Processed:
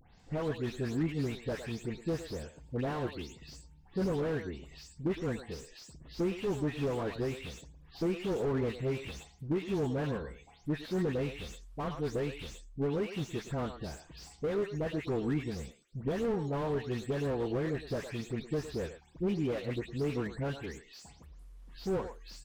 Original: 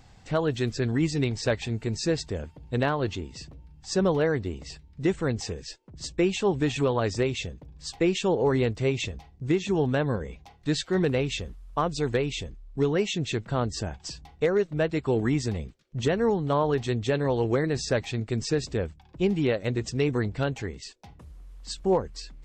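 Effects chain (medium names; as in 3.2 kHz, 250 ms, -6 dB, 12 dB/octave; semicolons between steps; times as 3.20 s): delay that grows with frequency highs late, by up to 199 ms; treble shelf 4.2 kHz +3 dB; speakerphone echo 110 ms, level -12 dB; slew-rate limiter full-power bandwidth 33 Hz; trim -6.5 dB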